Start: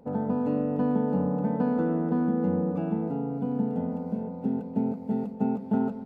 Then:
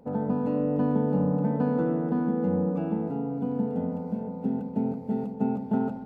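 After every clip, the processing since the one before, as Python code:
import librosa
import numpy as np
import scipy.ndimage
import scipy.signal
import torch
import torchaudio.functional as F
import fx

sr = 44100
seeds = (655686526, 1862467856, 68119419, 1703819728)

y = fx.echo_filtered(x, sr, ms=75, feedback_pct=79, hz=1200.0, wet_db=-12)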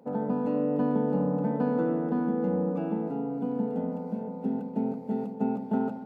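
y = scipy.signal.sosfilt(scipy.signal.butter(2, 190.0, 'highpass', fs=sr, output='sos'), x)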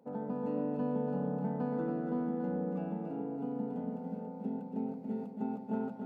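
y = x + 10.0 ** (-5.5 / 20.0) * np.pad(x, (int(281 * sr / 1000.0), 0))[:len(x)]
y = F.gain(torch.from_numpy(y), -8.5).numpy()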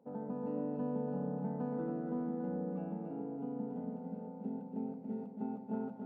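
y = fx.high_shelf(x, sr, hz=2300.0, db=-11.0)
y = F.gain(torch.from_numpy(y), -3.0).numpy()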